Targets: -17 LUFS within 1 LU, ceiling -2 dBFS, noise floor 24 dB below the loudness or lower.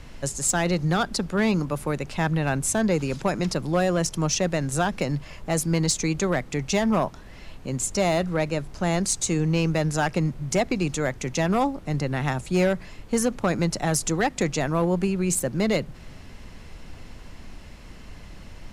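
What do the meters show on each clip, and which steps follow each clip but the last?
clipped 0.5%; flat tops at -14.5 dBFS; noise floor -44 dBFS; noise floor target -49 dBFS; loudness -25.0 LUFS; peak -14.5 dBFS; loudness target -17.0 LUFS
-> clip repair -14.5 dBFS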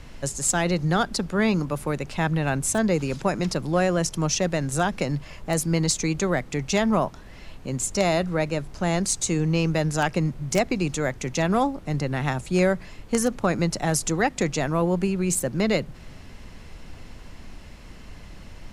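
clipped 0.0%; noise floor -44 dBFS; noise floor target -49 dBFS
-> noise print and reduce 6 dB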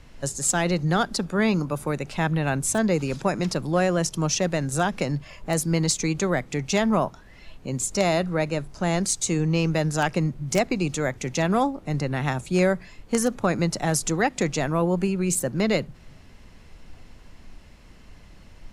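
noise floor -49 dBFS; loudness -24.5 LUFS; peak -5.5 dBFS; loudness target -17.0 LUFS
-> gain +7.5 dB; limiter -2 dBFS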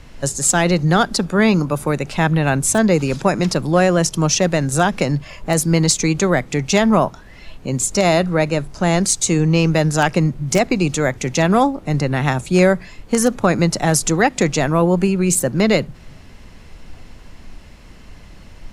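loudness -17.0 LUFS; peak -2.0 dBFS; noise floor -41 dBFS

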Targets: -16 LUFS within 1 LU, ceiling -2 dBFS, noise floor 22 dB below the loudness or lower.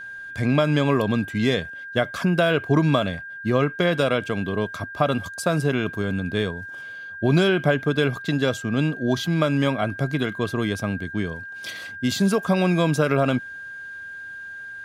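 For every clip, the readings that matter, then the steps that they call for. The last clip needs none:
steady tone 1600 Hz; tone level -34 dBFS; loudness -23.0 LUFS; peak -4.0 dBFS; loudness target -16.0 LUFS
-> notch 1600 Hz, Q 30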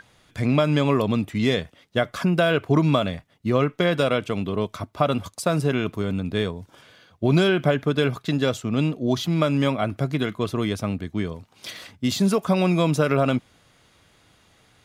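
steady tone none; loudness -23.0 LUFS; peak -4.5 dBFS; loudness target -16.0 LUFS
-> gain +7 dB; limiter -2 dBFS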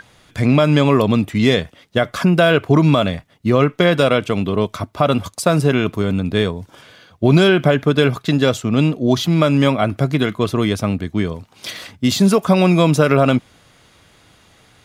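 loudness -16.5 LUFS; peak -2.0 dBFS; noise floor -52 dBFS

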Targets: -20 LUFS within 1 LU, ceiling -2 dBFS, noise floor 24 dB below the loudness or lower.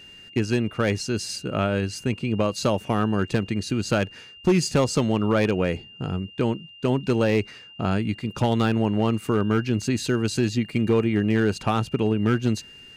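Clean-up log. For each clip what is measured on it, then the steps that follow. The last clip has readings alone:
clipped 0.6%; flat tops at -13.0 dBFS; steady tone 2800 Hz; tone level -44 dBFS; loudness -24.0 LUFS; peak -13.0 dBFS; loudness target -20.0 LUFS
-> clip repair -13 dBFS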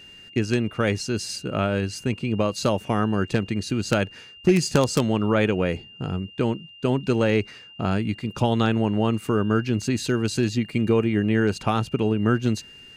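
clipped 0.0%; steady tone 2800 Hz; tone level -44 dBFS
-> notch 2800 Hz, Q 30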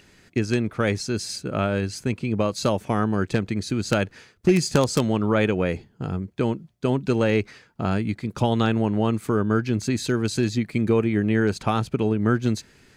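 steady tone none; loudness -24.0 LUFS; peak -4.0 dBFS; loudness target -20.0 LUFS
-> gain +4 dB; limiter -2 dBFS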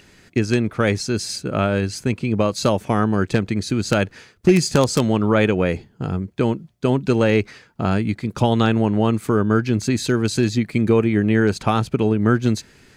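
loudness -20.0 LUFS; peak -2.0 dBFS; noise floor -53 dBFS

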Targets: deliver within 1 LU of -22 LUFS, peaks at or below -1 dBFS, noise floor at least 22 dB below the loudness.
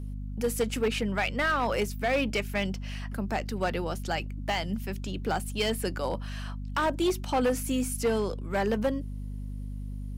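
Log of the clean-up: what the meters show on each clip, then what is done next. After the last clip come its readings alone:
clipped 1.2%; flat tops at -20.5 dBFS; hum 50 Hz; harmonics up to 250 Hz; hum level -33 dBFS; loudness -30.0 LUFS; peak -20.5 dBFS; loudness target -22.0 LUFS
-> clip repair -20.5 dBFS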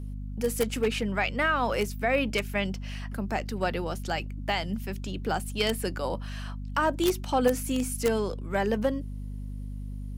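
clipped 0.0%; hum 50 Hz; harmonics up to 250 Hz; hum level -33 dBFS
-> de-hum 50 Hz, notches 5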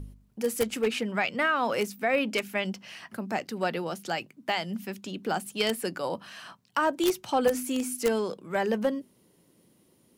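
hum none; loudness -29.5 LUFS; peak -11.0 dBFS; loudness target -22.0 LUFS
-> gain +7.5 dB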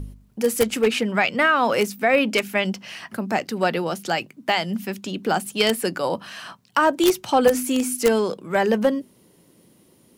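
loudness -22.0 LUFS; peak -3.5 dBFS; noise floor -57 dBFS

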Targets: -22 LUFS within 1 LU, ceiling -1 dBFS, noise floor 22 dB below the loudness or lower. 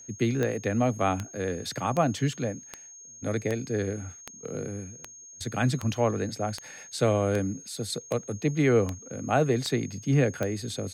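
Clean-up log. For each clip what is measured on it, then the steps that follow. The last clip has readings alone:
clicks 14; steady tone 6500 Hz; tone level -45 dBFS; loudness -28.5 LUFS; peak -11.0 dBFS; loudness target -22.0 LUFS
-> de-click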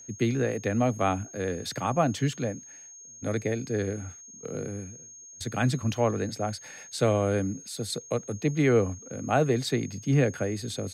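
clicks 0; steady tone 6500 Hz; tone level -45 dBFS
-> notch 6500 Hz, Q 30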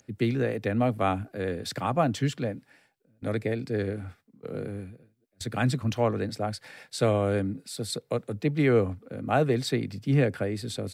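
steady tone none; loudness -28.5 LUFS; peak -11.0 dBFS; loudness target -22.0 LUFS
-> gain +6.5 dB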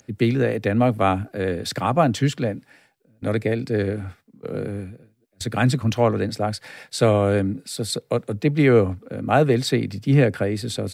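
loudness -22.0 LUFS; peak -4.5 dBFS; noise floor -62 dBFS

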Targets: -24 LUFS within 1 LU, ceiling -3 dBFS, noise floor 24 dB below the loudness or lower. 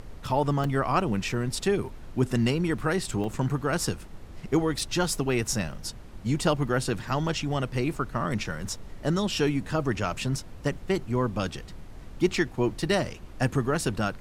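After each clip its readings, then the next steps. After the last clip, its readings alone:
dropouts 3; longest dropout 2.2 ms; noise floor -44 dBFS; noise floor target -52 dBFS; loudness -28.0 LUFS; peak -10.0 dBFS; loudness target -24.0 LUFS
-> interpolate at 0.64/3.24/4.79, 2.2 ms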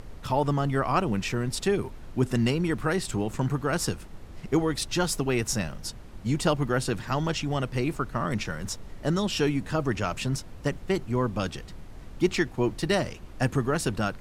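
dropouts 0; noise floor -44 dBFS; noise floor target -52 dBFS
-> noise print and reduce 8 dB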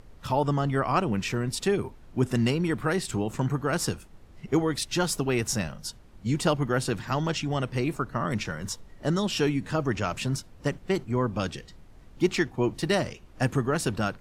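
noise floor -51 dBFS; noise floor target -52 dBFS
-> noise print and reduce 6 dB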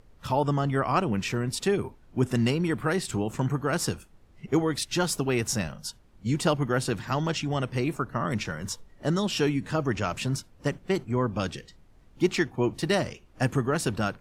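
noise floor -56 dBFS; loudness -28.0 LUFS; peak -10.5 dBFS; loudness target -24.0 LUFS
-> gain +4 dB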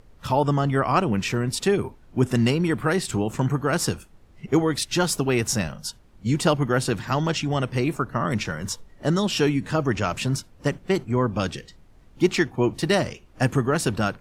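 loudness -24.0 LUFS; peak -6.5 dBFS; noise floor -52 dBFS

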